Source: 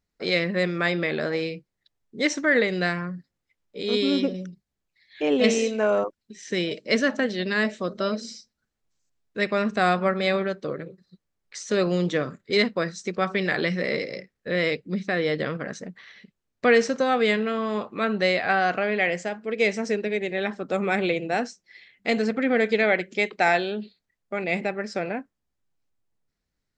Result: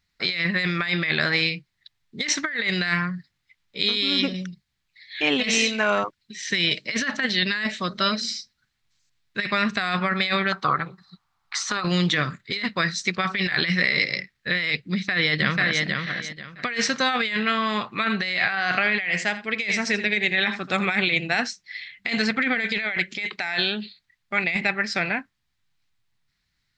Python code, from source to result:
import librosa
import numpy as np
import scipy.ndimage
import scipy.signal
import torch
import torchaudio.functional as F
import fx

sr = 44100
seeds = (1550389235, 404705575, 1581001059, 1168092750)

y = fx.band_shelf(x, sr, hz=990.0, db=16.0, octaves=1.2, at=(10.52, 11.84))
y = fx.echo_throw(y, sr, start_s=14.92, length_s=0.91, ms=490, feedback_pct=25, wet_db=-5.0)
y = fx.echo_single(y, sr, ms=82, db=-14.0, at=(17.86, 20.86))
y = fx.graphic_eq(y, sr, hz=(125, 250, 500, 1000, 2000, 4000), db=(6, -3, -10, 3, 8, 10))
y = fx.over_compress(y, sr, threshold_db=-23.0, ratio=-1.0)